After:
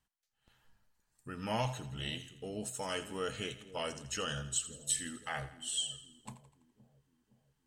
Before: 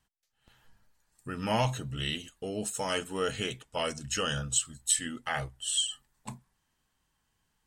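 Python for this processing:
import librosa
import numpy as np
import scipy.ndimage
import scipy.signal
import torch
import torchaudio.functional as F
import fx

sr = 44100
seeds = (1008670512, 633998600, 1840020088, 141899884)

y = fx.echo_split(x, sr, split_hz=530.0, low_ms=516, high_ms=83, feedback_pct=52, wet_db=-14)
y = F.gain(torch.from_numpy(y), -6.5).numpy()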